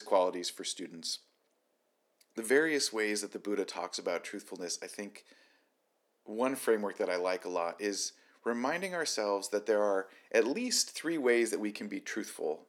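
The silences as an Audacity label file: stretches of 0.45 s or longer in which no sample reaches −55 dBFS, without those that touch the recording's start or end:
1.220000	2.210000	silence
5.470000	6.260000	silence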